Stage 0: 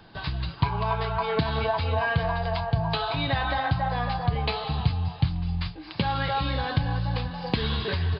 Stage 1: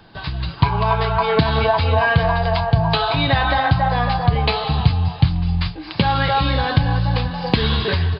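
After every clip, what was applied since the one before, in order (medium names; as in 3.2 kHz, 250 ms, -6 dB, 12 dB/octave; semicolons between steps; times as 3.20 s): level rider gain up to 5.5 dB; trim +3.5 dB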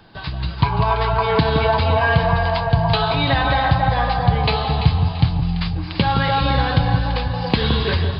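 echo whose repeats swap between lows and highs 169 ms, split 1.1 kHz, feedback 61%, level -5.5 dB; trim -1 dB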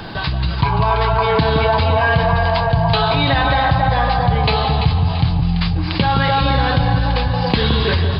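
level flattener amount 50%; trim -1.5 dB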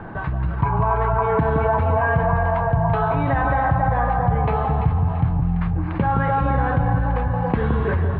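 low-pass 1.7 kHz 24 dB/octave; trim -3.5 dB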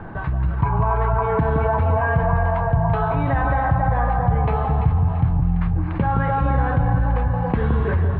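bass shelf 84 Hz +6.5 dB; trim -1.5 dB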